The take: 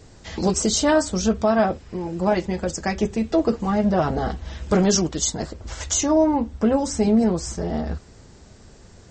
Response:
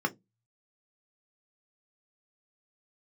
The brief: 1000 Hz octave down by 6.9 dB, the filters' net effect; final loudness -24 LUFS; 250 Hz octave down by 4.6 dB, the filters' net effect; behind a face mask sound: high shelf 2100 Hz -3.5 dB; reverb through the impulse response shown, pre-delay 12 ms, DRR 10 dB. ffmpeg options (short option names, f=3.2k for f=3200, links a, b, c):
-filter_complex "[0:a]equalizer=f=250:t=o:g=-5.5,equalizer=f=1k:t=o:g=-8.5,asplit=2[a][b];[1:a]atrim=start_sample=2205,adelay=12[c];[b][c]afir=irnorm=-1:irlink=0,volume=-18dB[d];[a][d]amix=inputs=2:normalize=0,highshelf=f=2.1k:g=-3.5,volume=1dB"